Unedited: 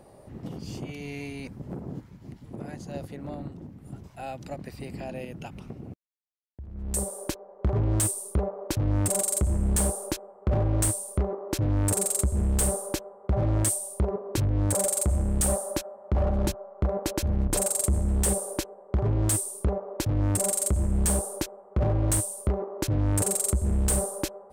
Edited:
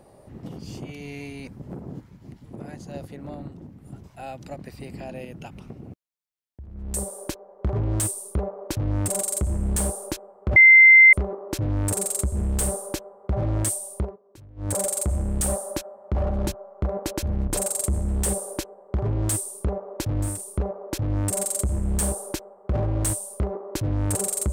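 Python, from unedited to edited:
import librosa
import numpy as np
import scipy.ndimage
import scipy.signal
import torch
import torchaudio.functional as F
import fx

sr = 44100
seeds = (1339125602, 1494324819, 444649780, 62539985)

y = fx.edit(x, sr, fx.bleep(start_s=10.56, length_s=0.57, hz=2080.0, db=-7.5),
    fx.fade_down_up(start_s=13.99, length_s=0.74, db=-22.0, fade_s=0.17),
    fx.repeat(start_s=19.38, length_s=0.93, count=2, crossfade_s=0.24), tone=tone)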